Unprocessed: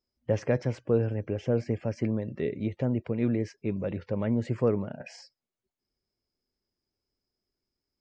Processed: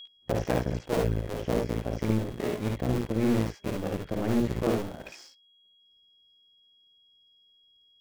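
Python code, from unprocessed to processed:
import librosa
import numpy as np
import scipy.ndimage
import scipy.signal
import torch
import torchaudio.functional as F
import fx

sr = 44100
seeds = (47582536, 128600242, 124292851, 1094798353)

y = fx.cycle_switch(x, sr, every=2, mode='muted')
y = y + 10.0 ** (-43.0 / 20.0) * np.sin(2.0 * np.pi * 3300.0 * np.arange(len(y)) / sr)
y = fx.room_early_taps(y, sr, ms=(55, 72), db=(-4.0, -5.5))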